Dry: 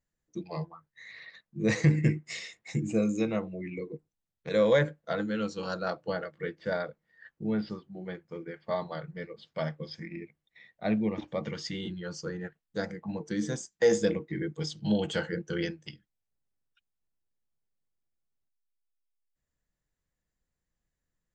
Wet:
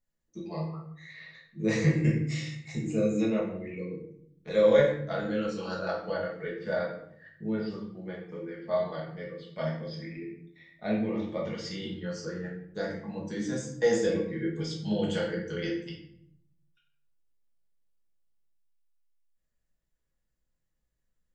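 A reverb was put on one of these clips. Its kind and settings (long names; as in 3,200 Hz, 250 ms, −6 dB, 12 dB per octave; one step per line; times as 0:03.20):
rectangular room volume 130 cubic metres, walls mixed, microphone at 1.4 metres
level −5.5 dB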